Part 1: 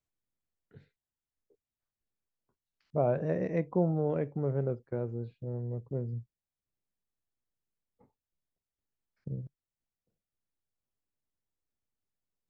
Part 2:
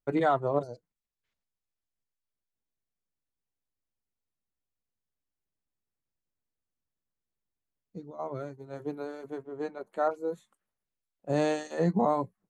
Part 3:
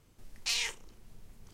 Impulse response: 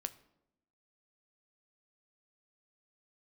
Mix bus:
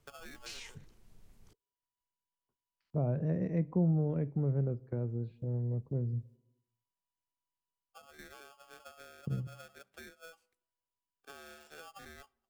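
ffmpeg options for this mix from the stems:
-filter_complex "[0:a]agate=range=-12dB:threshold=-57dB:ratio=16:detection=peak,volume=0dB,asplit=2[a][b];[b]volume=-5.5dB[c];[1:a]acompressor=threshold=-33dB:ratio=6,aeval=exprs='val(0)*sgn(sin(2*PI*980*n/s))':c=same,volume=-15dB,asplit=2[d][e];[e]volume=-9dB[f];[2:a]volume=-7dB[g];[3:a]atrim=start_sample=2205[h];[c][f]amix=inputs=2:normalize=0[i];[i][h]afir=irnorm=-1:irlink=0[j];[a][d][g][j]amix=inputs=4:normalize=0,acrossover=split=250[k][l];[l]acompressor=threshold=-49dB:ratio=2[m];[k][m]amix=inputs=2:normalize=0"

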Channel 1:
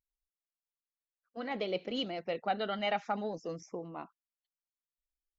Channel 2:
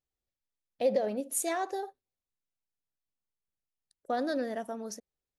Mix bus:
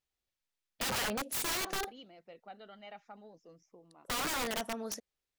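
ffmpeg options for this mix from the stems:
-filter_complex "[0:a]volume=-17.5dB[a];[1:a]equalizer=f=2.8k:t=o:w=2.9:g=7.5,volume=-1.5dB[b];[a][b]amix=inputs=2:normalize=0,aeval=exprs='(mod(28.2*val(0)+1,2)-1)/28.2':c=same"

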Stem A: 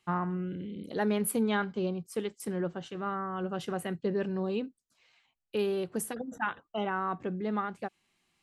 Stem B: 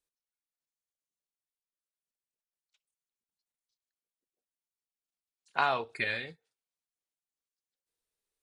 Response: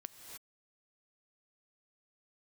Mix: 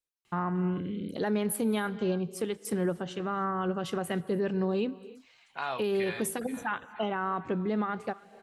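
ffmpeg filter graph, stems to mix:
-filter_complex "[0:a]adelay=250,volume=3dB,asplit=2[a][b];[b]volume=-7.5dB[c];[1:a]volume=-4.5dB,asplit=2[d][e];[e]volume=-16.5dB[f];[2:a]atrim=start_sample=2205[g];[c][g]afir=irnorm=-1:irlink=0[h];[f]aecho=0:1:477|954|1431|1908|2385|2862|3339:1|0.47|0.221|0.104|0.0488|0.0229|0.0108[i];[a][d][h][i]amix=inputs=4:normalize=0,alimiter=limit=-21dB:level=0:latency=1:release=125"

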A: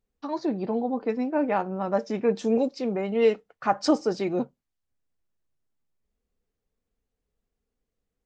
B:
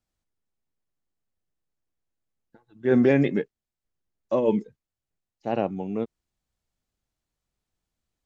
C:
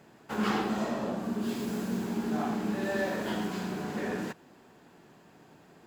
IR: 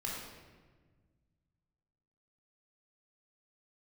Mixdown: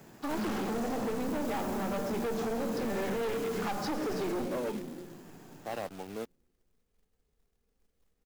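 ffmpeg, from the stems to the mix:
-filter_complex "[0:a]aeval=exprs='if(lt(val(0),0),0.708*val(0),val(0))':c=same,volume=1dB,asplit=2[a][b];[b]volume=-4.5dB[c];[1:a]highpass=f=670:p=1,aeval=exprs='val(0)*gte(abs(val(0)),0.00794)':c=same,adelay=200,volume=-2.5dB[d];[2:a]lowshelf=f=210:g=6,aexciter=amount=1.5:drive=7.2:freq=5.5k,volume=0.5dB,asplit=2[e][f];[f]volume=-18dB[g];[3:a]atrim=start_sample=2205[h];[c][g]amix=inputs=2:normalize=0[i];[i][h]afir=irnorm=-1:irlink=0[j];[a][d][e][j]amix=inputs=4:normalize=0,acrossover=split=140|4000[k][l][m];[k]acompressor=threshold=-37dB:ratio=4[n];[l]acompressor=threshold=-26dB:ratio=4[o];[m]acompressor=threshold=-48dB:ratio=4[p];[n][o][p]amix=inputs=3:normalize=0,asoftclip=type=tanh:threshold=-29dB,acrusher=bits=3:mode=log:mix=0:aa=0.000001"

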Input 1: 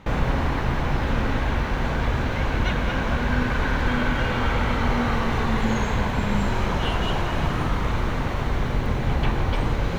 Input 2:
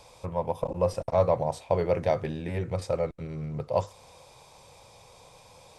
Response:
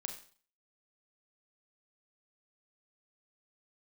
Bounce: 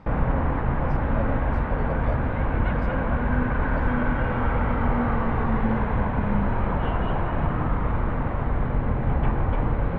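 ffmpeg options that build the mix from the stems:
-filter_complex "[0:a]lowpass=1.5k,equalizer=f=380:w=7.5:g=-5.5,volume=0dB[a];[1:a]volume=-10.5dB[b];[a][b]amix=inputs=2:normalize=0,lowpass=3.3k"

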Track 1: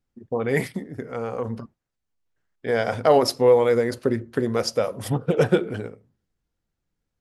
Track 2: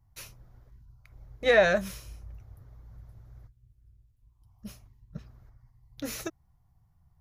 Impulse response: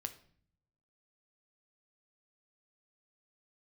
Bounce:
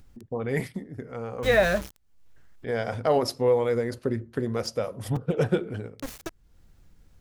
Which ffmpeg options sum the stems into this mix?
-filter_complex "[0:a]acompressor=mode=upward:threshold=-36dB:ratio=2.5,volume=-6.5dB[a];[1:a]aeval=exprs='val(0)*gte(abs(val(0)),0.0251)':c=same,volume=-0.5dB[b];[a][b]amix=inputs=2:normalize=0,lowshelf=f=110:g=11"

